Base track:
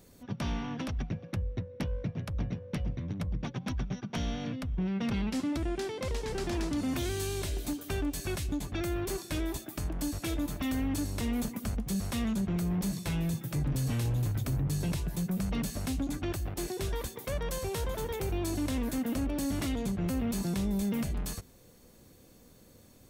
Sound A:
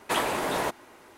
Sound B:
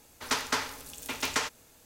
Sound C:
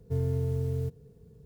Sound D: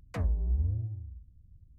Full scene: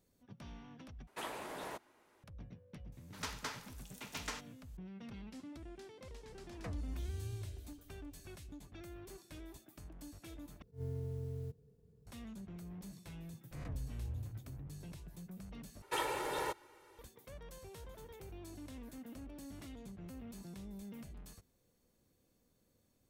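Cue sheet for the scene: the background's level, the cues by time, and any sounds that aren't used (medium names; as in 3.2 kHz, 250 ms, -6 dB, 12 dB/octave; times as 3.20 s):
base track -18 dB
1.07 s: replace with A -17 dB
2.92 s: add B -13.5 dB
6.50 s: add D -7 dB + compression, threshold -31 dBFS
10.62 s: replace with C -12 dB + attacks held to a fixed rise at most 240 dB/s
13.51 s: add D -15 dB + reverse spectral sustain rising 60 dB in 0.79 s
15.82 s: replace with A -12.5 dB + comb 2.2 ms, depth 87%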